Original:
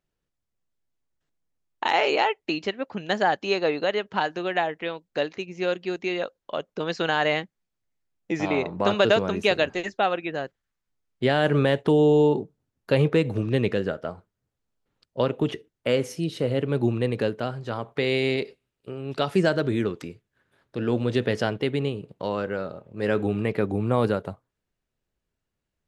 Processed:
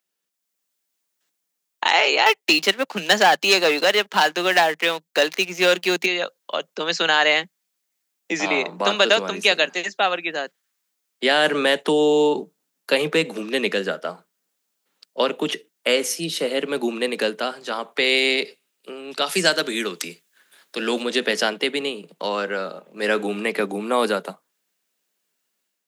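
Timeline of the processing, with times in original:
2.26–6.06 s: waveshaping leveller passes 2
19.26–21.03 s: treble shelf 2.1 kHz +8 dB
whole clip: steep high-pass 160 Hz 96 dB/octave; tilt EQ +3.5 dB/octave; level rider gain up to 6 dB

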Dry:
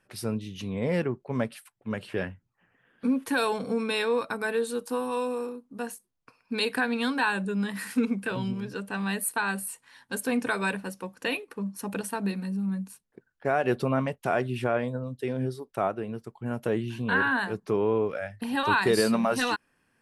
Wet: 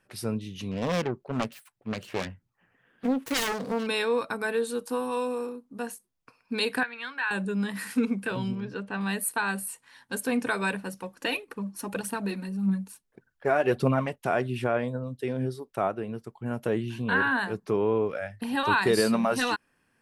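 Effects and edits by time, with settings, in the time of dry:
0.71–3.87 s: self-modulated delay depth 0.71 ms
6.83–7.31 s: band-pass filter 1.9 kHz, Q 1.7
8.55–9.01 s: Bessel low-pass 3.6 kHz
10.93–14.16 s: phaser 1.7 Hz, delay 3.6 ms, feedback 46%

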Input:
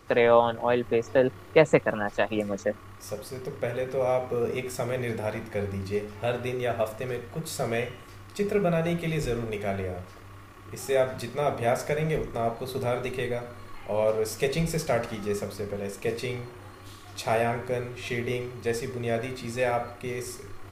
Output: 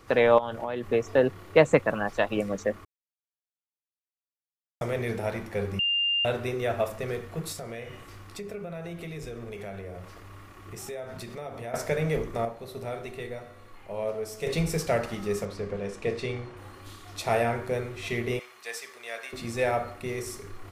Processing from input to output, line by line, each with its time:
0.38–0.90 s: compression 12:1, threshold -26 dBFS
2.85–4.81 s: mute
5.79–6.25 s: bleep 2.8 kHz -22.5 dBFS
7.52–11.74 s: compression 4:1, threshold -36 dBFS
12.45–14.47 s: feedback comb 72 Hz, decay 1.5 s
15.45–16.57 s: distance through air 67 m
18.39–19.33 s: high-pass 1.1 kHz

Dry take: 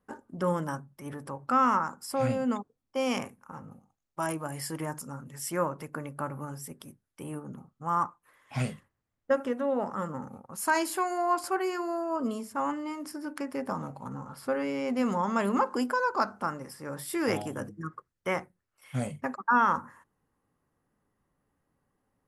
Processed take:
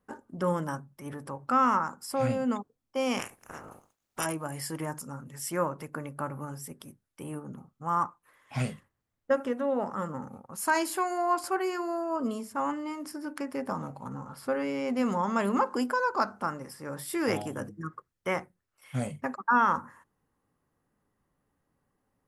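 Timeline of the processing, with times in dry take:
3.18–4.24 s: spectral peaks clipped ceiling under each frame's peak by 24 dB

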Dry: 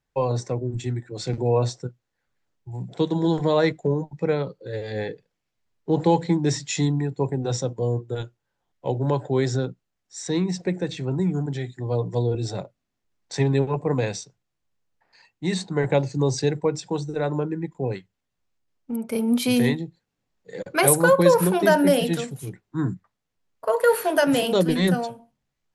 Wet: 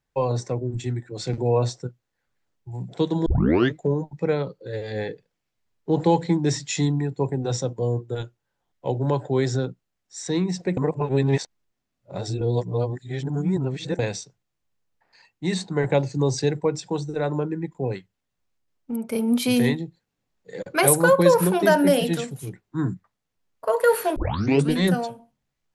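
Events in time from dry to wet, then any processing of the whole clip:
3.26 s: tape start 0.49 s
10.77–13.99 s: reverse
24.16 s: tape start 0.56 s

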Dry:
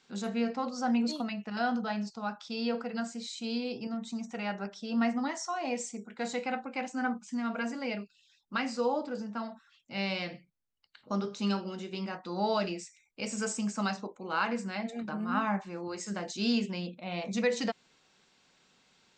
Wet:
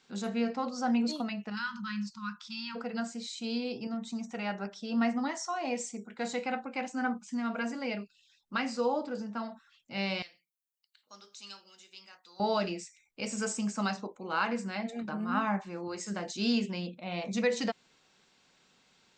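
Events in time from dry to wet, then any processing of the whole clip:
1.55–2.76 s: spectral selection erased 230–900 Hz
10.22–12.40 s: differentiator

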